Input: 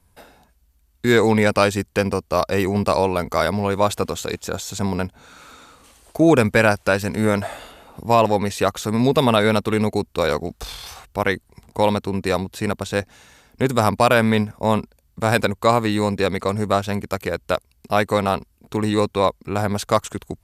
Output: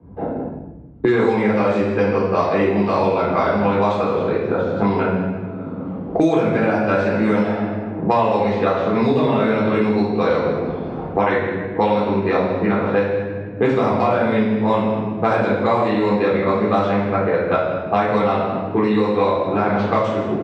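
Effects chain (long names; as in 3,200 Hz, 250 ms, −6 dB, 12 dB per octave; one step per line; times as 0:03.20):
low-pass that shuts in the quiet parts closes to 320 Hz, open at −13 dBFS
de-essing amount 65%
band-pass filter 170–3,700 Hz
on a send: single-tap delay 159 ms −15 dB
on the sum: rectangular room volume 350 cubic metres, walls mixed, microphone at 3.8 metres
multiband upward and downward compressor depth 100%
level −8 dB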